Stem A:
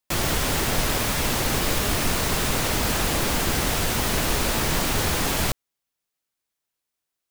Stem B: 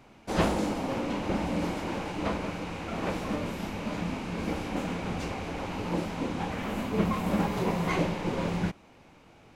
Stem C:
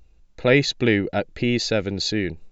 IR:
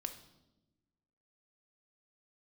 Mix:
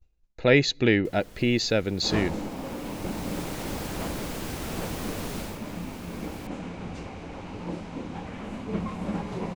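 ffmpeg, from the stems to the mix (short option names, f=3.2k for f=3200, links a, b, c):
-filter_complex "[0:a]acrossover=split=140|570[a][b][c];[a]acompressor=threshold=-37dB:ratio=4[d];[b]acompressor=threshold=-35dB:ratio=4[e];[c]acompressor=threshold=-38dB:ratio=4[f];[d][e][f]amix=inputs=3:normalize=0,adelay=950,volume=-2dB,afade=t=out:st=5.38:d=0.22:silence=0.316228[g];[1:a]lowpass=f=9.7k:w=0.5412,lowpass=f=9.7k:w=1.3066,lowshelf=f=440:g=4,adelay=1750,volume=-6.5dB[h];[2:a]agate=range=-33dB:threshold=-43dB:ratio=3:detection=peak,volume=-2.5dB,asplit=3[i][j][k];[j]volume=-23.5dB[l];[k]apad=whole_len=364112[m];[g][m]sidechaincompress=threshold=-37dB:ratio=6:attack=16:release=1130[n];[3:a]atrim=start_sample=2205[o];[l][o]afir=irnorm=-1:irlink=0[p];[n][h][i][p]amix=inputs=4:normalize=0"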